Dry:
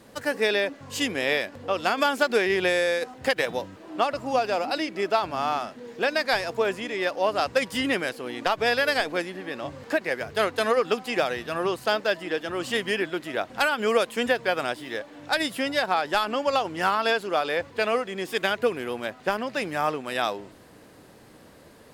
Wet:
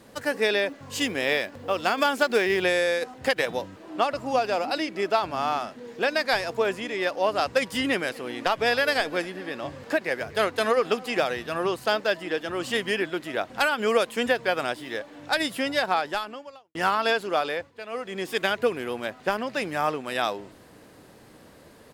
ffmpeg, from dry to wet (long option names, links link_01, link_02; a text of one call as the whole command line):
ffmpeg -i in.wav -filter_complex "[0:a]asettb=1/sr,asplit=3[link_01][link_02][link_03];[link_01]atrim=end=0.684[link_04];[link_02]atrim=start=0.68:end=2.63,asetpts=PTS-STARTPTS,afade=type=in:duration=0.004:curve=qsin,afade=type=out:start_time=1.946:duration=0.004:curve=qsin,acrusher=bits=8:mode=log:mix=0:aa=0.000001[link_05];[link_03]atrim=start=2.626[link_06];[link_04][link_05]acrossfade=duration=0.004:curve1=hsin:curve2=qsin[link_07];[link_07][link_06]acrossfade=duration=0.004:curve1=qsin:curve2=hsin,asplit=3[link_08][link_09][link_10];[link_08]afade=type=out:start_time=8.08:duration=0.02[link_11];[link_09]aecho=1:1:247|494|741|988:0.0708|0.0404|0.023|0.0131,afade=type=in:start_time=8.08:duration=0.02,afade=type=out:start_time=11.31:duration=0.02[link_12];[link_10]afade=type=in:start_time=11.31:duration=0.02[link_13];[link_11][link_12][link_13]amix=inputs=3:normalize=0,asplit=4[link_14][link_15][link_16][link_17];[link_14]atrim=end=16.75,asetpts=PTS-STARTPTS,afade=type=out:start_time=15.97:duration=0.78:curve=qua[link_18];[link_15]atrim=start=16.75:end=17.72,asetpts=PTS-STARTPTS,afade=type=in:duration=0.004:curve=hsin,afade=type=out:start_time=0.69:duration=0.28:silence=0.199526[link_19];[link_16]atrim=start=17.72:end=17.88,asetpts=PTS-STARTPTS,volume=-14dB[link_20];[link_17]atrim=start=17.88,asetpts=PTS-STARTPTS,afade=type=in:duration=0.28:silence=0.199526[link_21];[link_18][link_19][link_20][link_21]concat=n=4:v=0:a=1" out.wav